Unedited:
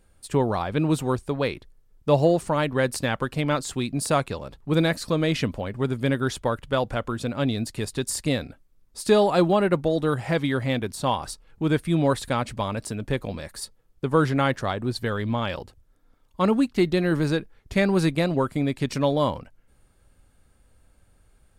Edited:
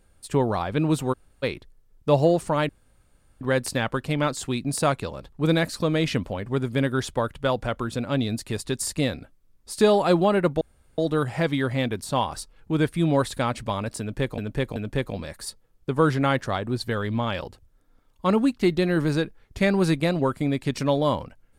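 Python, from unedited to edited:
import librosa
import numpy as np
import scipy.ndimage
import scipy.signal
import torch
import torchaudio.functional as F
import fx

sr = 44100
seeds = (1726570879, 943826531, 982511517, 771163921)

y = fx.edit(x, sr, fx.room_tone_fill(start_s=1.13, length_s=0.3, crossfade_s=0.02),
    fx.insert_room_tone(at_s=2.69, length_s=0.72),
    fx.insert_room_tone(at_s=9.89, length_s=0.37),
    fx.repeat(start_s=12.91, length_s=0.38, count=3), tone=tone)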